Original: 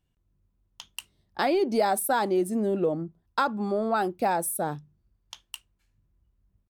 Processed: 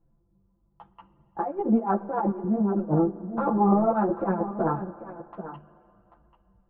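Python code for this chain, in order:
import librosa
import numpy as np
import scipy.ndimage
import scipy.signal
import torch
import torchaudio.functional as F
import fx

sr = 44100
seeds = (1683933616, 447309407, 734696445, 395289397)

y = fx.spec_clip(x, sr, under_db=14, at=(2.89, 5.42), fade=0.02)
y = scipy.signal.sosfilt(scipy.signal.butter(4, 1100.0, 'lowpass', fs=sr, output='sos'), y)
y = y + 0.91 * np.pad(y, (int(5.9 * sr / 1000.0), 0))[:len(y)]
y = fx.over_compress(y, sr, threshold_db=-27.0, ratio=-0.5)
y = y + 10.0 ** (-12.5 / 20.0) * np.pad(y, (int(789 * sr / 1000.0), 0))[:len(y)]
y = fx.rev_spring(y, sr, rt60_s=2.9, pass_ms=(39, 56), chirp_ms=45, drr_db=15.5)
y = fx.ensemble(y, sr)
y = y * 10.0 ** (6.0 / 20.0)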